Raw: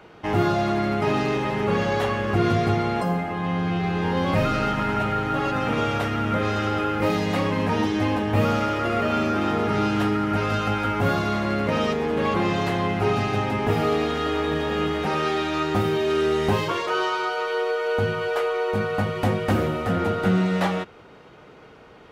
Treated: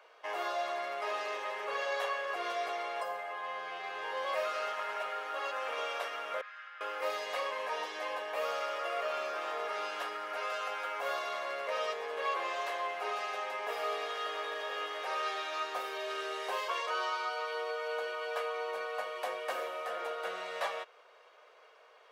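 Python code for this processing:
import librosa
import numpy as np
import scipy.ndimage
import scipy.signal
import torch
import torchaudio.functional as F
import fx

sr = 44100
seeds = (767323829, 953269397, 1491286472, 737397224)

y = fx.ladder_bandpass(x, sr, hz=1900.0, resonance_pct=45, at=(6.41, 6.81))
y = scipy.signal.sosfilt(scipy.signal.butter(4, 560.0, 'highpass', fs=sr, output='sos'), y)
y = y + 0.42 * np.pad(y, (int(1.8 * sr / 1000.0), 0))[:len(y)]
y = y * librosa.db_to_amplitude(-9.0)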